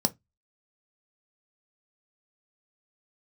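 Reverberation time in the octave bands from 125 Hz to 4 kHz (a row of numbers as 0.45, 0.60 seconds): 0.30, 0.25, 0.15, 0.15, 0.15, 0.15 seconds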